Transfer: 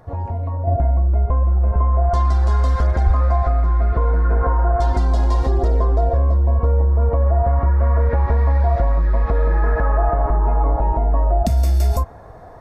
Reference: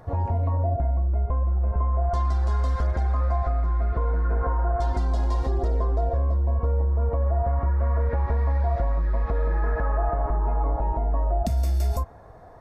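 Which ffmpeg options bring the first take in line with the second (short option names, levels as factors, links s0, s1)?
-filter_complex "[0:a]asplit=3[s0][s1][s2];[s0]afade=t=out:st=3.05:d=0.02[s3];[s1]highpass=f=140:w=0.5412,highpass=f=140:w=1.3066,afade=t=in:st=3.05:d=0.02,afade=t=out:st=3.17:d=0.02[s4];[s2]afade=t=in:st=3.17:d=0.02[s5];[s3][s4][s5]amix=inputs=3:normalize=0,asetnsamples=n=441:p=0,asendcmd='0.67 volume volume -7dB',volume=1"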